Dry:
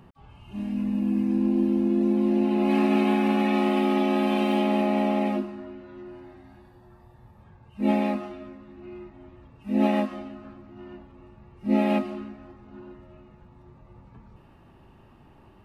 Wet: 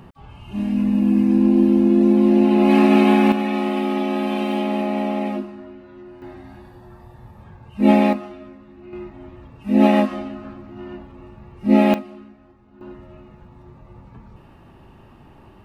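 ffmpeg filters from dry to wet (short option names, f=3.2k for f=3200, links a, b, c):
-af "asetnsamples=n=441:p=0,asendcmd='3.32 volume volume 1dB;6.22 volume volume 9dB;8.13 volume volume 1.5dB;8.93 volume volume 8dB;11.94 volume volume -5dB;12.81 volume volume 6.5dB',volume=8dB"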